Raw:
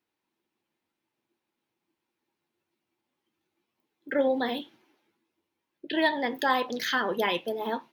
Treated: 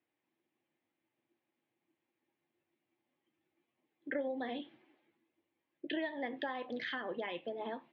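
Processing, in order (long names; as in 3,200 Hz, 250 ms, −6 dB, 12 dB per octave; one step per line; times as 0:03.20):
downward compressor 16 to 1, threshold −33 dBFS, peak gain reduction 15 dB
loudspeaker in its box 120–2,900 Hz, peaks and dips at 200 Hz −8 dB, 420 Hz −6 dB, 950 Hz −8 dB, 1,400 Hz −9 dB, 2,600 Hz −4 dB
level +1.5 dB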